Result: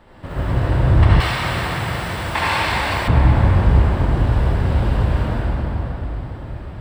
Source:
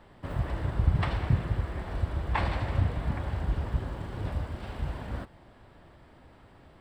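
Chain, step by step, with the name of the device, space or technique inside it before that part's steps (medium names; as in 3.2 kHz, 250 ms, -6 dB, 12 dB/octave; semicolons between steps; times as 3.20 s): cathedral (reverberation RT60 4.9 s, pre-delay 61 ms, DRR -9 dB); 1.20–3.08 s: tilt EQ +4 dB/octave; trim +5 dB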